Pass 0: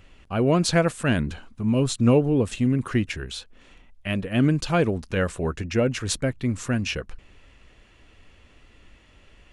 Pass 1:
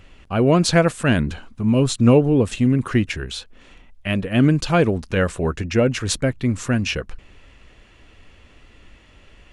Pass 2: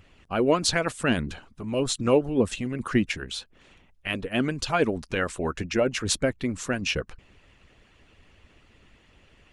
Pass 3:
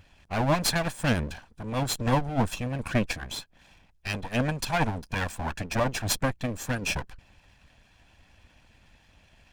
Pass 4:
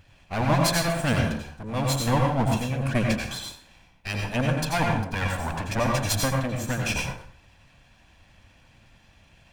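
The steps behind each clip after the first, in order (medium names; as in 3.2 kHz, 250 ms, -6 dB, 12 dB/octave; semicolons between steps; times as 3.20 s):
treble shelf 9.8 kHz -3.5 dB; trim +4.5 dB
harmonic-percussive split harmonic -14 dB; trim -2 dB
comb filter that takes the minimum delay 1.2 ms
plate-style reverb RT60 0.5 s, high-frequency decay 0.8×, pre-delay 75 ms, DRR 0.5 dB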